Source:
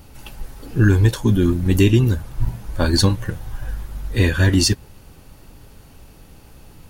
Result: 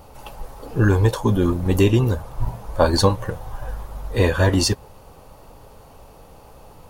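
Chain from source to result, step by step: high-order bell 730 Hz +11 dB; trim -3 dB

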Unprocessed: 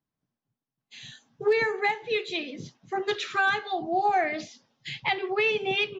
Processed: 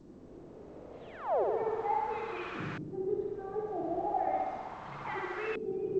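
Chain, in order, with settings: random holes in the spectrogram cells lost 35%; de-hum 50.53 Hz, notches 22; reverse; compression 8:1, threshold -41 dBFS, peak gain reduction 21 dB; reverse; painted sound fall, 1.01–1.44 s, 340–4000 Hz -40 dBFS; in parallel at -4.5 dB: word length cut 6-bit, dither triangular; on the sum: flutter echo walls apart 10.9 m, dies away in 1.4 s; LFO low-pass saw up 0.36 Hz 290–1600 Hz; G.722 64 kbps 16 kHz

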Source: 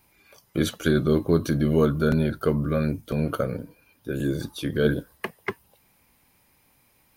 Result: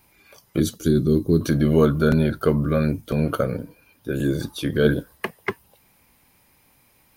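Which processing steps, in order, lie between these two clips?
0.60–1.41 s: high-order bell 1.3 kHz -14.5 dB 2.9 oct; trim +3.5 dB

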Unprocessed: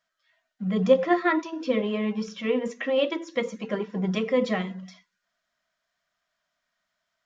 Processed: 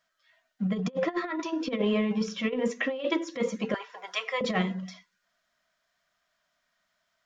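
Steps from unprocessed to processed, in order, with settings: 3.74–4.41 s: high-pass 760 Hz 24 dB/octave; compressor with a negative ratio -27 dBFS, ratio -0.5

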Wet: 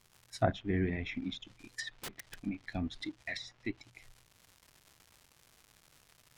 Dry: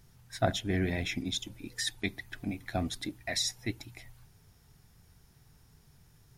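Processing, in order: spectral noise reduction 9 dB; crackle 360 per s -44 dBFS; in parallel at -6 dB: crossover distortion -51 dBFS; on the sum: low-pass that closes with the level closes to 2 kHz, closed at -27 dBFS; 1.94–2.34 s: integer overflow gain 32 dB; trim -4.5 dB

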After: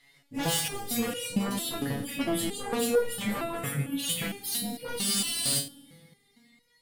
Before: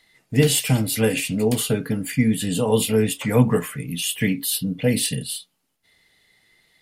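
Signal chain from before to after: sawtooth pitch modulation +1.5 st, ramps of 248 ms; in parallel at -8 dB: sine folder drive 16 dB, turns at -4.5 dBFS; on the sum: reverberation RT60 2.1 s, pre-delay 3 ms, DRR 7 dB; spectral freeze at 5.03 s, 0.55 s; resonator arpeggio 4.4 Hz 140–480 Hz; trim -3.5 dB

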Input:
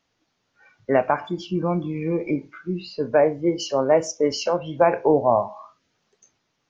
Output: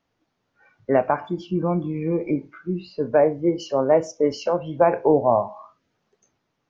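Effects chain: treble shelf 2.2 kHz -10.5 dB; trim +1 dB

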